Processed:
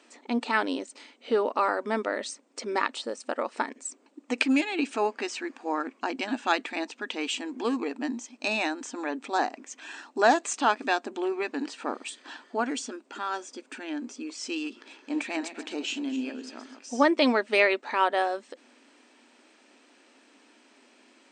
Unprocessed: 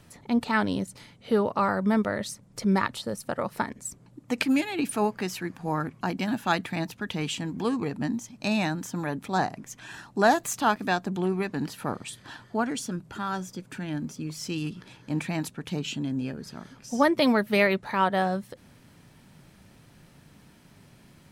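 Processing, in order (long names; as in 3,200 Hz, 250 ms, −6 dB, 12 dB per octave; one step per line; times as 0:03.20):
0:14.78–0:16.79: feedback delay that plays each chunk backwards 126 ms, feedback 51%, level −10 dB
linear-phase brick-wall band-pass 230–9,000 Hz
parametric band 2,600 Hz +4.5 dB 0.34 octaves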